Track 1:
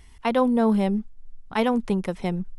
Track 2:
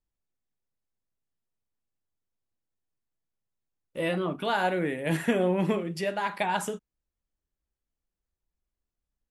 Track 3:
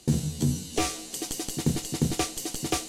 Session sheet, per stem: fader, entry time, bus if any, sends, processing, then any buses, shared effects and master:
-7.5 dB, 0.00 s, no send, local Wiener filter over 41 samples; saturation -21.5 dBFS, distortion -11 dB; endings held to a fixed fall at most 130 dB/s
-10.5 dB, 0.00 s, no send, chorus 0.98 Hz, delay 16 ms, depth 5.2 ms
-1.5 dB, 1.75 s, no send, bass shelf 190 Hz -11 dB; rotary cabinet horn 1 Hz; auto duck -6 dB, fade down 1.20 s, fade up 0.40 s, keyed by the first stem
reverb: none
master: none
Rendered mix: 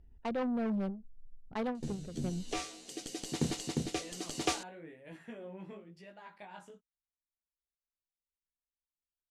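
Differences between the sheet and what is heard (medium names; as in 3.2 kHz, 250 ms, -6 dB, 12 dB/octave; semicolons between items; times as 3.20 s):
stem 2 -10.5 dB -> -18.5 dB; master: extra distance through air 56 m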